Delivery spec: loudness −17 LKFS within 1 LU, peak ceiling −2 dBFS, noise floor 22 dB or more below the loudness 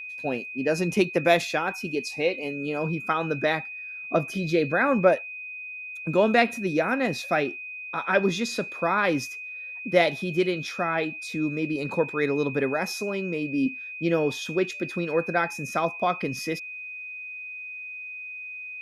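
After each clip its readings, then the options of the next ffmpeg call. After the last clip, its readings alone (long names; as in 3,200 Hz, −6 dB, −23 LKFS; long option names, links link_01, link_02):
interfering tone 2,500 Hz; level of the tone −35 dBFS; integrated loudness −26.5 LKFS; sample peak −6.5 dBFS; target loudness −17.0 LKFS
→ -af "bandreject=frequency=2500:width=30"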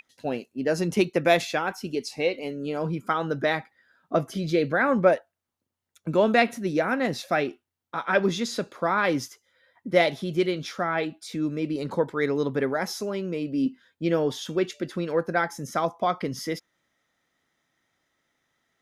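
interfering tone none found; integrated loudness −26.5 LKFS; sample peak −6.5 dBFS; target loudness −17.0 LKFS
→ -af "volume=9.5dB,alimiter=limit=-2dB:level=0:latency=1"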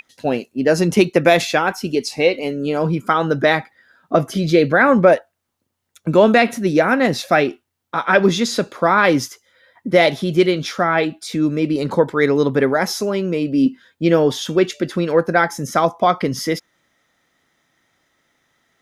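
integrated loudness −17.5 LKFS; sample peak −2.0 dBFS; background noise floor −73 dBFS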